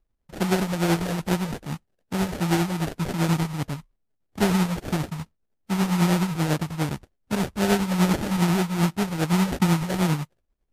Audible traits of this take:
tremolo triangle 10 Hz, depth 60%
phaser sweep stages 8, 2.5 Hz, lowest notch 330–2,400 Hz
aliases and images of a low sample rate 1,100 Hz, jitter 20%
MP3

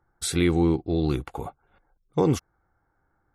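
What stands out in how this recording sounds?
background noise floor −72 dBFS
spectral slope −6.0 dB per octave

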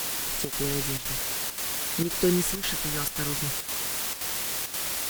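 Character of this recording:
phaser sweep stages 2, 0.61 Hz, lowest notch 390–1,200 Hz
a quantiser's noise floor 6 bits, dither triangular
chopped level 1.9 Hz, depth 60%, duty 85%
Opus

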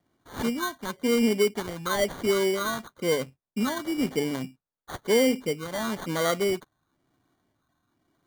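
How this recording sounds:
phaser sweep stages 8, 1 Hz, lowest notch 440–4,500 Hz
aliases and images of a low sample rate 2,600 Hz, jitter 0%

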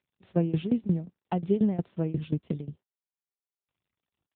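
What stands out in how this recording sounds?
tremolo saw down 5.6 Hz, depth 90%
AMR narrowband

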